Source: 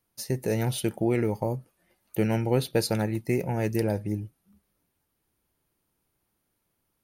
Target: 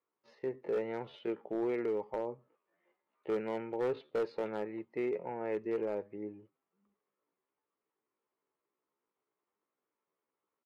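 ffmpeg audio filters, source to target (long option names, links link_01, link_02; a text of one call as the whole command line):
ffmpeg -i in.wav -af "highpass=400,equalizer=frequency=420:width_type=q:width=4:gain=6,equalizer=frequency=720:width_type=q:width=4:gain=-4,equalizer=frequency=1100:width_type=q:width=4:gain=5,equalizer=frequency=1600:width_type=q:width=4:gain=-5,equalizer=frequency=2500:width_type=q:width=4:gain=-4,lowpass=frequency=2500:width=0.5412,lowpass=frequency=2500:width=1.3066,volume=21.5dB,asoftclip=hard,volume=-21.5dB,atempo=0.66,volume=-6dB" out.wav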